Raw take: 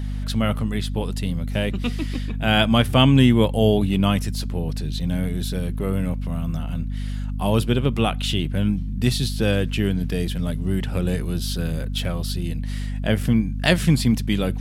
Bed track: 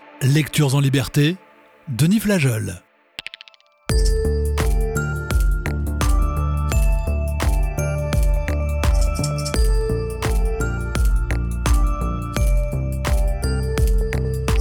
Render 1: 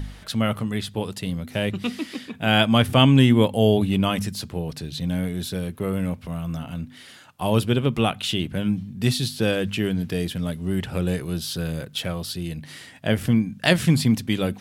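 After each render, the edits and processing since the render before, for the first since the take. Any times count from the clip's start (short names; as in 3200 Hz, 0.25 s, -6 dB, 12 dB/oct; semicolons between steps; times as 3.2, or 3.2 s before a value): de-hum 50 Hz, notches 5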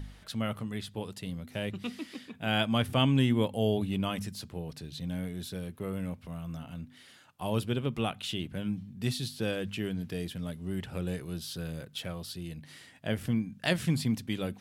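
gain -10 dB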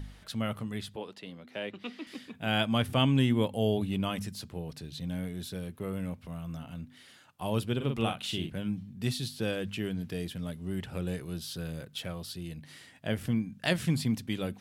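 0.96–2.07 three-band isolator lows -22 dB, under 230 Hz, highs -16 dB, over 4800 Hz; 7.76–8.5 doubler 44 ms -5.5 dB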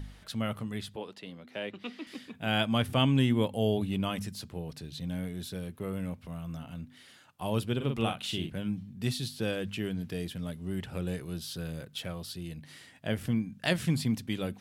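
nothing audible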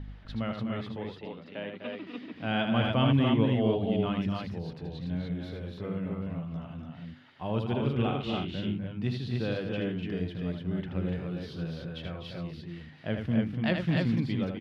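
air absorption 280 m; loudspeakers at several distances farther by 27 m -6 dB, 86 m -8 dB, 100 m -3 dB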